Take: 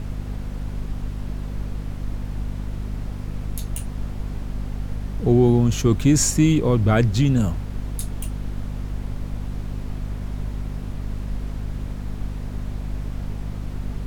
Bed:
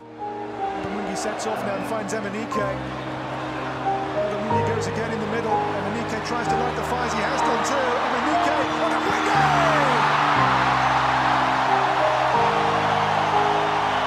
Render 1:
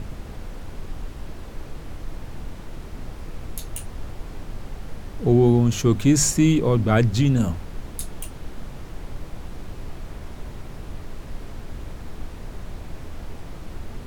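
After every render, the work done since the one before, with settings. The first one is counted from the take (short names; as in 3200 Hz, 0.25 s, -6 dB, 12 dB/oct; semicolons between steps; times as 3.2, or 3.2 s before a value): notches 50/100/150/200/250 Hz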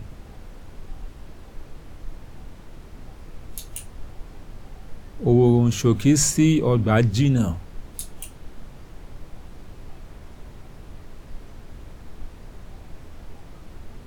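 noise print and reduce 6 dB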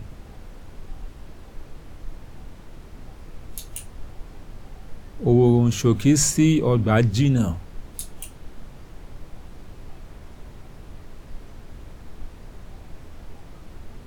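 nothing audible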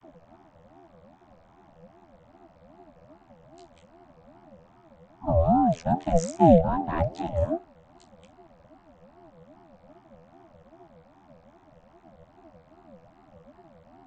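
vocoder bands 32, saw 82.1 Hz; ring modulator with a swept carrier 430 Hz, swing 25%, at 2.5 Hz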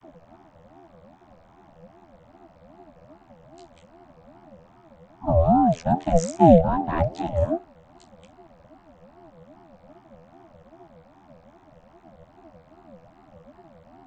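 gain +3 dB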